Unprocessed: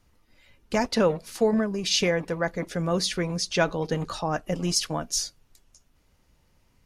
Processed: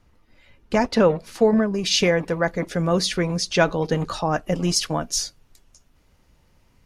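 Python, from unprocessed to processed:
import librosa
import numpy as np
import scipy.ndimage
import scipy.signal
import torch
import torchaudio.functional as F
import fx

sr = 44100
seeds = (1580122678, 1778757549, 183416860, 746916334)

y = fx.high_shelf(x, sr, hz=4400.0, db=fx.steps((0.0, -10.0), (1.73, -3.5)))
y = y * librosa.db_to_amplitude(5.0)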